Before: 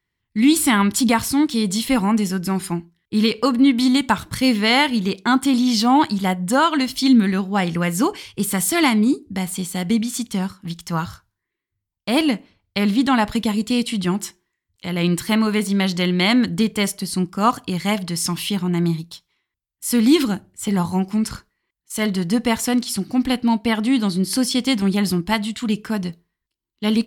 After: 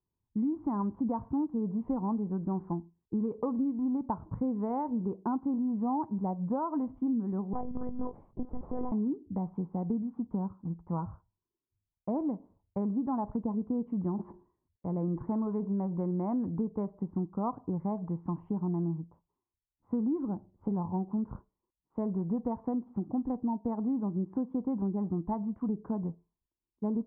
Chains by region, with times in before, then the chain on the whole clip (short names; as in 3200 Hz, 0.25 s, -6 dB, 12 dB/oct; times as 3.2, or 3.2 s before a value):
7.53–8.92 tube stage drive 14 dB, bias 0.55 + monotone LPC vocoder at 8 kHz 250 Hz
14.1–16.59 gate -42 dBFS, range -25 dB + sustainer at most 98 dB/s
whole clip: elliptic low-pass 990 Hz, stop band 80 dB; compressor, threshold -23 dBFS; gain -5.5 dB